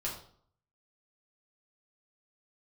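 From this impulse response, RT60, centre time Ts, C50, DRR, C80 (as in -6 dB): 0.60 s, 30 ms, 6.0 dB, -5.0 dB, 10.0 dB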